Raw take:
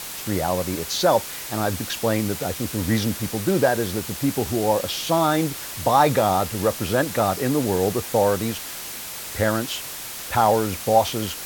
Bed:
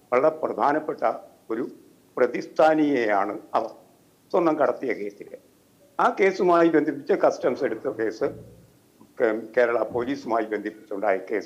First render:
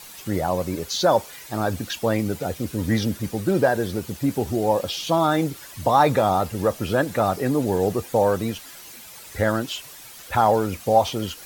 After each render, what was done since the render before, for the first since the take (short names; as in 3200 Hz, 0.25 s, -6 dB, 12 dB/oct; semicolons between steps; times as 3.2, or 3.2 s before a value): denoiser 11 dB, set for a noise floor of -34 dBFS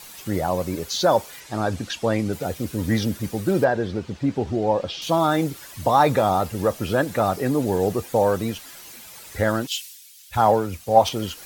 1.4–2.33 LPF 8600 Hz; 3.64–5.02 air absorption 130 m; 9.67–11.09 three-band expander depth 100%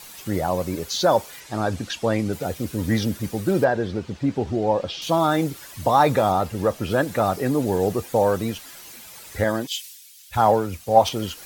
6.32–6.91 high shelf 6400 Hz -5 dB; 9.44–9.84 notch comb 1400 Hz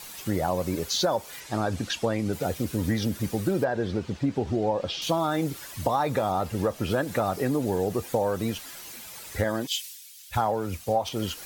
compressor 10:1, threshold -21 dBFS, peak gain reduction 13 dB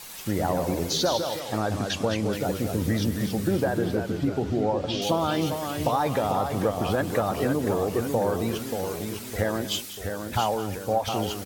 echo 0.193 s -14.5 dB; echoes that change speed 97 ms, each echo -1 st, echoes 3, each echo -6 dB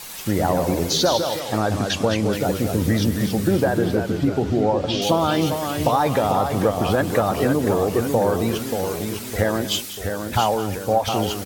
gain +5.5 dB